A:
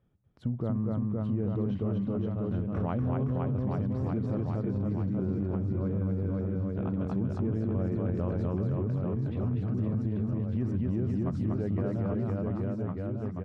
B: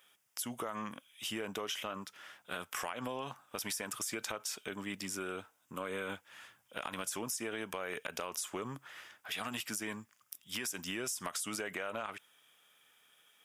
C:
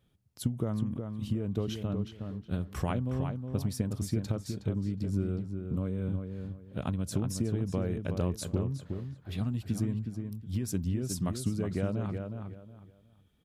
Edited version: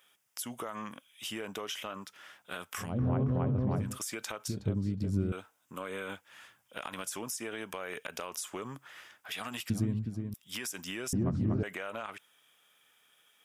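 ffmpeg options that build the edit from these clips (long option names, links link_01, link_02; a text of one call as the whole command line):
ffmpeg -i take0.wav -i take1.wav -i take2.wav -filter_complex "[0:a]asplit=2[link_01][link_02];[2:a]asplit=2[link_03][link_04];[1:a]asplit=5[link_05][link_06][link_07][link_08][link_09];[link_05]atrim=end=3.01[link_10];[link_01]atrim=start=2.77:end=3.99[link_11];[link_06]atrim=start=3.75:end=4.482[link_12];[link_03]atrim=start=4.478:end=5.322[link_13];[link_07]atrim=start=5.318:end=9.702[link_14];[link_04]atrim=start=9.698:end=10.342[link_15];[link_08]atrim=start=10.338:end=11.132[link_16];[link_02]atrim=start=11.128:end=11.632[link_17];[link_09]atrim=start=11.628[link_18];[link_10][link_11]acrossfade=duration=0.24:curve1=tri:curve2=tri[link_19];[link_19][link_12]acrossfade=duration=0.24:curve1=tri:curve2=tri[link_20];[link_20][link_13]acrossfade=duration=0.004:curve1=hsin:curve2=hsin[link_21];[link_21][link_14]acrossfade=duration=0.004:curve1=hsin:curve2=hsin[link_22];[link_22][link_15]acrossfade=duration=0.004:curve1=hsin:curve2=hsin[link_23];[link_23][link_16]acrossfade=duration=0.004:curve1=hsin:curve2=hsin[link_24];[link_24][link_17]acrossfade=duration=0.004:curve1=hsin:curve2=hsin[link_25];[link_25][link_18]acrossfade=duration=0.004:curve1=hsin:curve2=hsin" out.wav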